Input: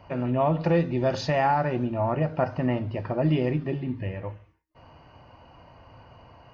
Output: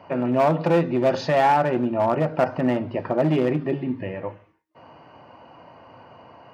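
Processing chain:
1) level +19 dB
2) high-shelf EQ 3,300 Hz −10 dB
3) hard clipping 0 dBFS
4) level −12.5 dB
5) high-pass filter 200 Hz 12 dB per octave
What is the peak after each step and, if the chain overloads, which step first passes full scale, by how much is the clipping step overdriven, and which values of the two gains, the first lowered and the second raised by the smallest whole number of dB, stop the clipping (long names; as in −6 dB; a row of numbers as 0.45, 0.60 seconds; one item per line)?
+6.0, +5.5, 0.0, −12.5, −8.5 dBFS
step 1, 5.5 dB
step 1 +13 dB, step 4 −6.5 dB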